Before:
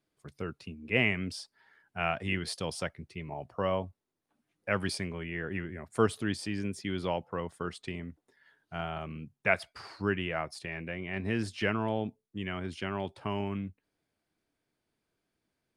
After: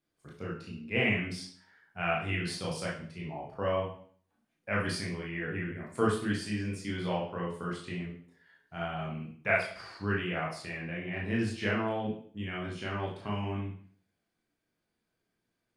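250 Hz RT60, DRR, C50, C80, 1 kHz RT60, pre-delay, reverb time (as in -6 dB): 0.60 s, -4.5 dB, 4.0 dB, 9.0 dB, 0.50 s, 19 ms, 0.50 s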